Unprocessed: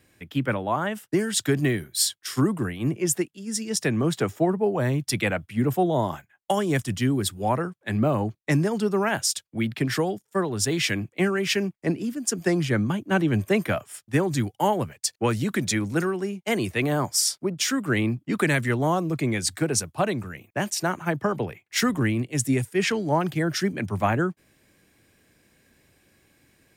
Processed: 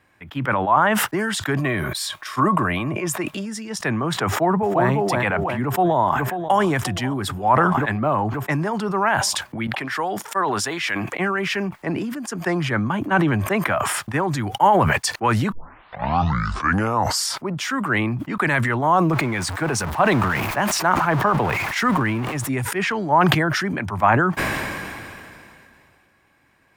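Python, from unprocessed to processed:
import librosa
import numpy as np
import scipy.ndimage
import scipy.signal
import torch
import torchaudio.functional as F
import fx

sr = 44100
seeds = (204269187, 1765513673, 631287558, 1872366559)

y = fx.small_body(x, sr, hz=(610.0, 1100.0, 2400.0, 3700.0), ring_ms=45, db=10, at=(1.57, 3.46))
y = fx.echo_throw(y, sr, start_s=4.27, length_s=0.61, ms=350, feedback_pct=25, wet_db=-0.5)
y = fx.echo_throw(y, sr, start_s=5.61, length_s=0.98, ms=540, feedback_pct=65, wet_db=-18.0)
y = fx.highpass(y, sr, hz=500.0, slope=6, at=(9.67, 11.14))
y = fx.zero_step(y, sr, step_db=-34.0, at=(19.13, 22.49))
y = fx.edit(y, sr, fx.tape_start(start_s=15.52, length_s=1.77), tone=tone)
y = fx.curve_eq(y, sr, hz=(470.0, 970.0, 3700.0, 7800.0), db=(0, 13, -1, -6))
y = fx.sustainer(y, sr, db_per_s=23.0)
y = y * librosa.db_to_amplitude(-2.5)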